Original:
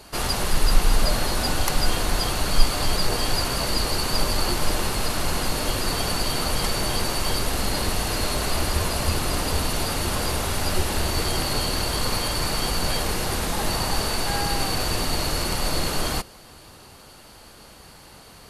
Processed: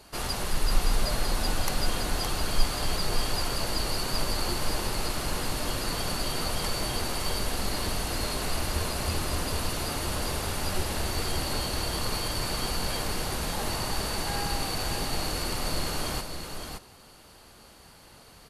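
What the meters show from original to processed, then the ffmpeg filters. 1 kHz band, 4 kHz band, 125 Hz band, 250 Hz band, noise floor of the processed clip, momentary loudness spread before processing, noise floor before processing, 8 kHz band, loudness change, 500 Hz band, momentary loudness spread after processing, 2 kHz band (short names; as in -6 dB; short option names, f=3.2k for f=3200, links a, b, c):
-5.5 dB, -5.5 dB, -5.5 dB, -5.5 dB, -52 dBFS, 2 LU, -47 dBFS, -5.5 dB, -5.5 dB, -5.5 dB, 2 LU, -5.5 dB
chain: -af "aecho=1:1:567:0.473,volume=-6.5dB"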